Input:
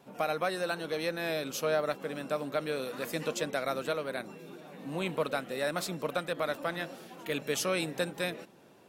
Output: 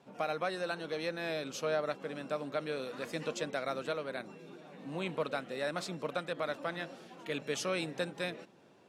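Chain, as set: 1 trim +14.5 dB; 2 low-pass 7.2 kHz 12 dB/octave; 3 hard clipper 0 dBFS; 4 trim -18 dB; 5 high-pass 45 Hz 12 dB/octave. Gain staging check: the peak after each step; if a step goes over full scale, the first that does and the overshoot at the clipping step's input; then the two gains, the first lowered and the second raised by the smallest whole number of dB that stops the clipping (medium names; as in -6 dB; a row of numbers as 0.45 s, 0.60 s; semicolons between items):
-3.0 dBFS, -3.0 dBFS, -3.0 dBFS, -21.0 dBFS, -21.0 dBFS; nothing clips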